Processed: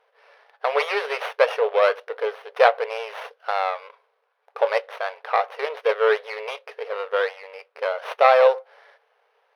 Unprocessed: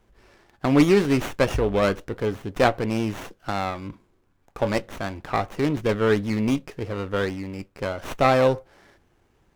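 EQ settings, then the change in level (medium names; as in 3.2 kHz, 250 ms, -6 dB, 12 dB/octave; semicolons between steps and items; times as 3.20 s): boxcar filter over 6 samples; brick-wall FIR high-pass 420 Hz; +4.5 dB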